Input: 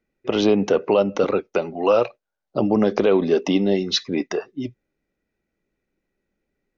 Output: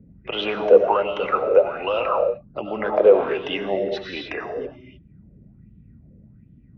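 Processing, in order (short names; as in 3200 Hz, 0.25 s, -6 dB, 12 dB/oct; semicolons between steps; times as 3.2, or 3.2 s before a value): three-band isolator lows -13 dB, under 410 Hz, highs -23 dB, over 2900 Hz; band noise 38–220 Hz -45 dBFS; reverb, pre-delay 55 ms, DRR 2.5 dB; LFO bell 1.3 Hz 490–3300 Hz +17 dB; gain -5.5 dB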